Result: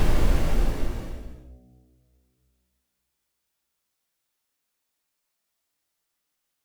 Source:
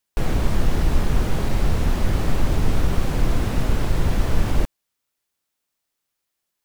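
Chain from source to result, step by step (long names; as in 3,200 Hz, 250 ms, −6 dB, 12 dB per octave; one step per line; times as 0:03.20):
hum removal 62.28 Hz, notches 12
extreme stretch with random phases 4.4×, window 0.50 s, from 0:04.54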